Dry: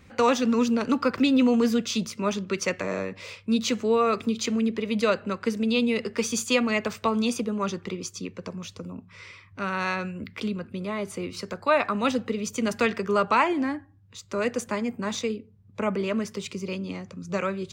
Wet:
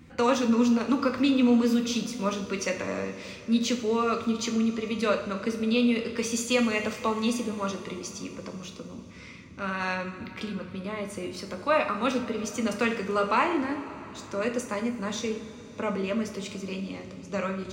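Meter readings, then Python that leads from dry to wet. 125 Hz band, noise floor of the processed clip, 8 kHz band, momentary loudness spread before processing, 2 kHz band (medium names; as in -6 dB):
-2.5 dB, -45 dBFS, -2.0 dB, 14 LU, -2.0 dB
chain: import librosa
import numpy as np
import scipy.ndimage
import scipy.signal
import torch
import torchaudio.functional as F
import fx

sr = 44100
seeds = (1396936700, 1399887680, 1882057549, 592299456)

y = fx.dmg_noise_band(x, sr, seeds[0], low_hz=58.0, high_hz=290.0, level_db=-49.0)
y = fx.wow_flutter(y, sr, seeds[1], rate_hz=2.1, depth_cents=18.0)
y = fx.rev_double_slope(y, sr, seeds[2], early_s=0.5, late_s=4.6, knee_db=-16, drr_db=3.5)
y = y * 10.0 ** (-3.5 / 20.0)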